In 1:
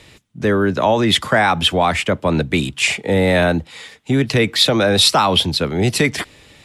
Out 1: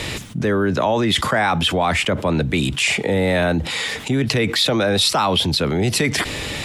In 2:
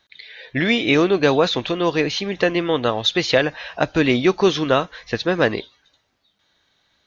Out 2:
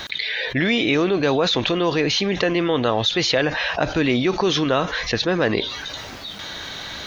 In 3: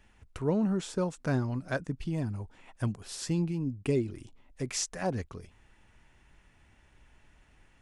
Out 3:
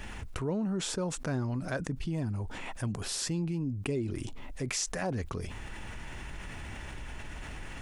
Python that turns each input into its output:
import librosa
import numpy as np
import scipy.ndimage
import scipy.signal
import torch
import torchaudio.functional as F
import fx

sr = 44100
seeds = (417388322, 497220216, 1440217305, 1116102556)

y = fx.env_flatten(x, sr, amount_pct=70)
y = y * librosa.db_to_amplitude(-5.5)